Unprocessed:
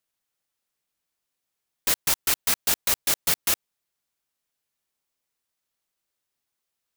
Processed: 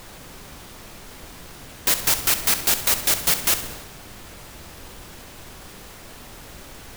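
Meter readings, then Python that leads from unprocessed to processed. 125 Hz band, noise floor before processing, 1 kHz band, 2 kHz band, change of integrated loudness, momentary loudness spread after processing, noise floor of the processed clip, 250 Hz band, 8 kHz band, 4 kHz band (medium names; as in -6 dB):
+8.0 dB, -83 dBFS, +4.5 dB, +4.0 dB, +4.0 dB, 7 LU, -42 dBFS, +6.0 dB, +4.0 dB, +4.0 dB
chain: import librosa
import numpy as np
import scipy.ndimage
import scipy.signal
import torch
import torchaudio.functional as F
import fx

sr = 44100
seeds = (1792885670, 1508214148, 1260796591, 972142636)

y = fx.power_curve(x, sr, exponent=0.7)
y = fx.dmg_noise_colour(y, sr, seeds[0], colour='pink', level_db=-42.0)
y = fx.transient(y, sr, attack_db=1, sustain_db=6)
y = fx.echo_feedback(y, sr, ms=66, feedback_pct=53, wet_db=-12)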